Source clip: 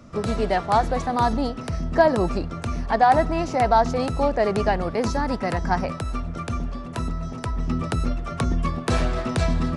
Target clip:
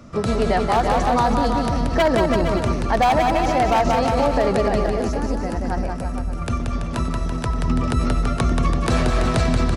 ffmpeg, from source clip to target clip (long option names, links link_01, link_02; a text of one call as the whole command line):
ffmpeg -i in.wav -filter_complex "[0:a]asettb=1/sr,asplit=3[link_01][link_02][link_03];[link_01]atrim=end=4.684[link_04];[link_02]atrim=start=4.68:end=6.42,asetpts=PTS-STARTPTS,afade=type=in:duration=0.004:curve=qsin,afade=type=out:start_time=1.736:duration=0.004:curve=qsin,equalizer=frequency=125:width_type=o:width=1:gain=-10,equalizer=frequency=500:width_type=o:width=1:gain=-4,equalizer=frequency=1000:width_type=o:width=1:gain=-9,equalizer=frequency=2000:width_type=o:width=1:gain=-8,equalizer=frequency=4000:width_type=o:width=1:gain=-10,equalizer=frequency=8000:width_type=o:width=1:gain=-3[link_05];[link_03]atrim=start=6.416[link_06];[link_04][link_05]acrossfade=duration=0.004:curve1=hsin:curve2=qsin[link_07];[link_07][link_06]acrossfade=duration=0.004:curve1=qsin:curve2=hsin,aeval=exprs='0.251*(abs(mod(val(0)/0.251+3,4)-2)-1)':channel_layout=same,asplit=2[link_08][link_09];[link_09]aecho=0:1:180|333|463|573.6|667.6:0.631|0.398|0.251|0.158|0.1[link_10];[link_08][link_10]amix=inputs=2:normalize=0,alimiter=level_in=12dB:limit=-1dB:release=50:level=0:latency=1,volume=-8.5dB" out.wav